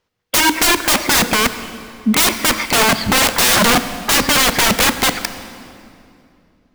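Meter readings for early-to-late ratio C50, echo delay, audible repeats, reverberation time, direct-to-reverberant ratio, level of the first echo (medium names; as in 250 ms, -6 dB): 11.5 dB, no echo, no echo, 2.7 s, 11.0 dB, no echo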